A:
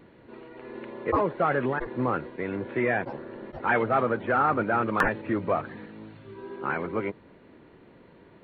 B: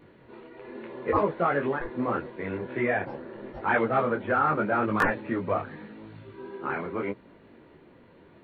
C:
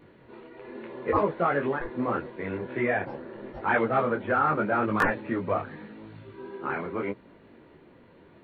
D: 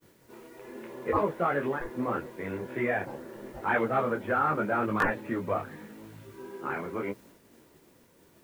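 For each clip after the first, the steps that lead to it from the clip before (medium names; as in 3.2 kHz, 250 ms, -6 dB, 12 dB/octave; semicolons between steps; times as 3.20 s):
detune thickener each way 28 cents; trim +3 dB
no audible change
word length cut 10-bit, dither triangular; expander -48 dBFS; trim -2.5 dB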